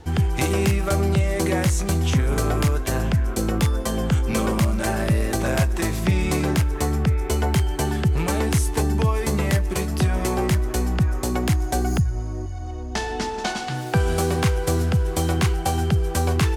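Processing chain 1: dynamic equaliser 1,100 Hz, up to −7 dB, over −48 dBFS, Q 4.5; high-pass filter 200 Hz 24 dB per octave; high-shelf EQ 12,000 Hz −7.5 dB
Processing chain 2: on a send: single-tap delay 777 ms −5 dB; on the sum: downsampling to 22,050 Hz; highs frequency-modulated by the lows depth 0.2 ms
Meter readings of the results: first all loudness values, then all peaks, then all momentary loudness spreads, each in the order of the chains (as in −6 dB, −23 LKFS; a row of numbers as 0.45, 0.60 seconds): −27.0, −21.5 LKFS; −9.5, −8.0 dBFS; 4, 3 LU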